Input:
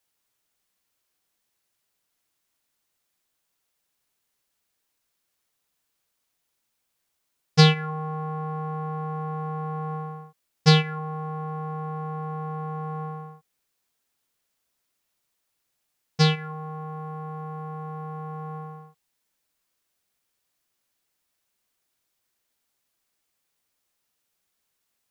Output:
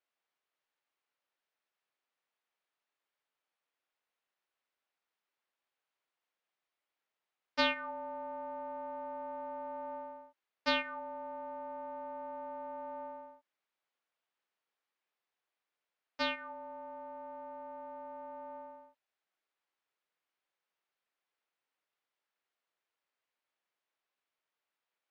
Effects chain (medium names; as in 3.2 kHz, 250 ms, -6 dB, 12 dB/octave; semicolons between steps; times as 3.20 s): frequency shift -200 Hz; band-pass 420–2800 Hz; trim -5.5 dB